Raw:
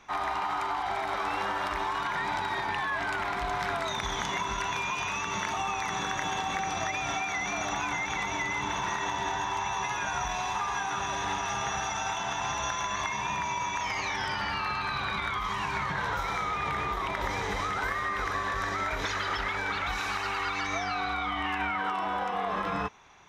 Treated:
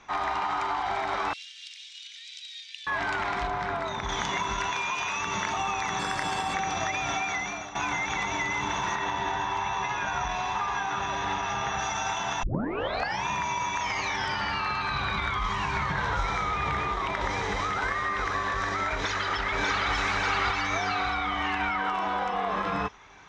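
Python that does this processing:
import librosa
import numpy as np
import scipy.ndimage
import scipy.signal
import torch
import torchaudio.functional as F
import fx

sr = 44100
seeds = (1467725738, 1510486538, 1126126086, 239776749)

y = fx.steep_highpass(x, sr, hz=2900.0, slope=36, at=(1.33, 2.87))
y = fx.high_shelf(y, sr, hz=2400.0, db=-10.0, at=(3.47, 4.09))
y = fx.low_shelf(y, sr, hz=220.0, db=-9.5, at=(4.7, 5.2))
y = fx.resample_bad(y, sr, factor=4, down='none', up='hold', at=(5.99, 6.54))
y = fx.bessel_lowpass(y, sr, hz=4400.0, order=2, at=(8.95, 11.79))
y = fx.low_shelf(y, sr, hz=79.0, db=10.5, at=(14.9, 16.79))
y = fx.echo_throw(y, sr, start_s=18.93, length_s=0.99, ms=590, feedback_pct=55, wet_db=-1.0)
y = fx.edit(y, sr, fx.fade_out_to(start_s=7.32, length_s=0.43, floor_db=-15.0),
    fx.tape_start(start_s=12.43, length_s=0.81), tone=tone)
y = scipy.signal.sosfilt(scipy.signal.butter(4, 7700.0, 'lowpass', fs=sr, output='sos'), y)
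y = y * 10.0 ** (2.0 / 20.0)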